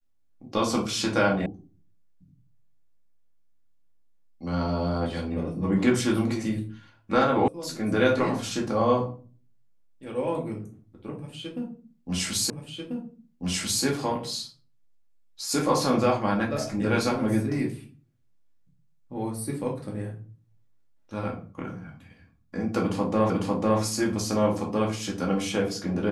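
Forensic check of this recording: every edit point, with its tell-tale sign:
1.46 sound cut off
7.48 sound cut off
12.5 repeat of the last 1.34 s
23.3 repeat of the last 0.5 s

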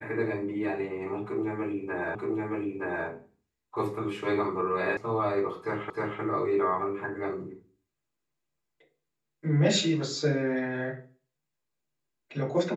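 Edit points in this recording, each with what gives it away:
2.15 repeat of the last 0.92 s
4.97 sound cut off
5.9 repeat of the last 0.31 s

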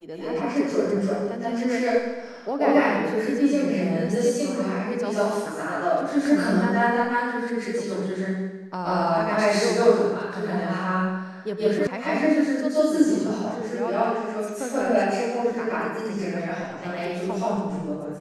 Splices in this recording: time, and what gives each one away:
11.87 sound cut off

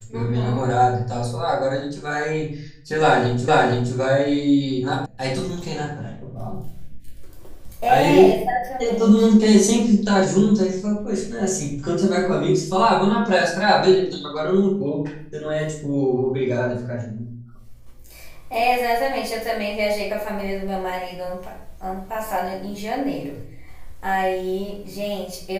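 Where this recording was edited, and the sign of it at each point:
3.48 repeat of the last 0.47 s
5.06 sound cut off

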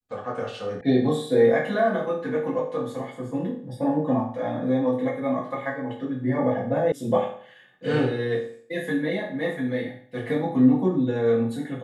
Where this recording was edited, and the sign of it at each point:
0.81 sound cut off
6.92 sound cut off

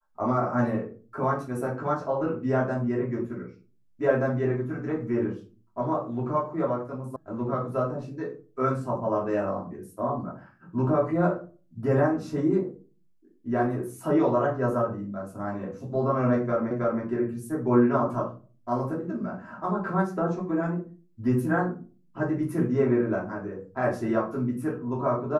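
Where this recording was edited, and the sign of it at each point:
7.16 sound cut off
16.71 repeat of the last 0.32 s

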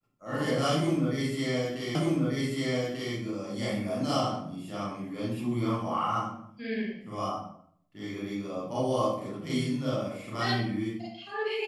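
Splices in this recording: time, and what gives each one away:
1.95 repeat of the last 1.19 s

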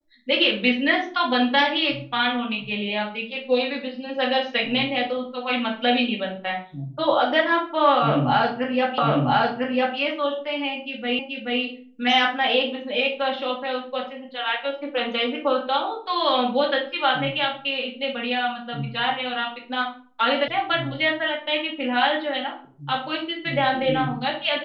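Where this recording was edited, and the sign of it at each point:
8.98 repeat of the last 1 s
11.19 repeat of the last 0.43 s
20.48 sound cut off

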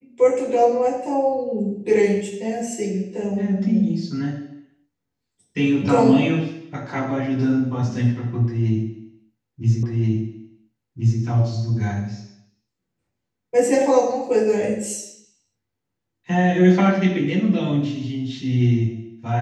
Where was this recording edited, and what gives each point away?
9.83 repeat of the last 1.38 s

